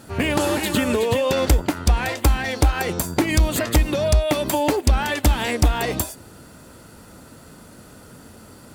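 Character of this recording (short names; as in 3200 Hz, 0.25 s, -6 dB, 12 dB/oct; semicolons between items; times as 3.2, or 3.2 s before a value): noise floor -45 dBFS; spectral tilt -5.0 dB/oct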